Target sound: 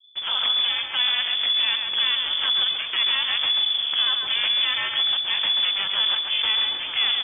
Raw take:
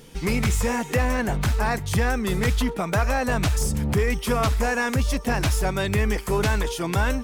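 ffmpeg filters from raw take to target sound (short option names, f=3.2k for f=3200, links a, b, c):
-filter_complex "[0:a]acrossover=split=120[a][b];[b]acrusher=bits=3:dc=4:mix=0:aa=0.000001[c];[a][c]amix=inputs=2:normalize=0,lowpass=f=3k:t=q:w=0.5098,lowpass=f=3k:t=q:w=0.6013,lowpass=f=3k:t=q:w=0.9,lowpass=f=3k:t=q:w=2.563,afreqshift=-3500,asplit=2[d][e];[e]adelay=135,lowpass=f=2.4k:p=1,volume=-4dB,asplit=2[f][g];[g]adelay=135,lowpass=f=2.4k:p=1,volume=0.32,asplit=2[h][i];[i]adelay=135,lowpass=f=2.4k:p=1,volume=0.32,asplit=2[j][k];[k]adelay=135,lowpass=f=2.4k:p=1,volume=0.32[l];[d][f][h][j][l]amix=inputs=5:normalize=0"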